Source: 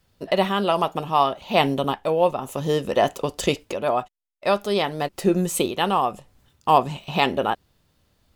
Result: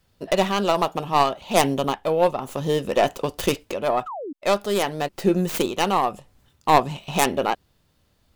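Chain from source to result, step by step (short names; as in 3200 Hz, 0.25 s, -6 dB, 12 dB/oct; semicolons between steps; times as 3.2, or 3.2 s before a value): tracing distortion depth 0.25 ms; painted sound fall, 4.06–4.33, 260–1400 Hz -32 dBFS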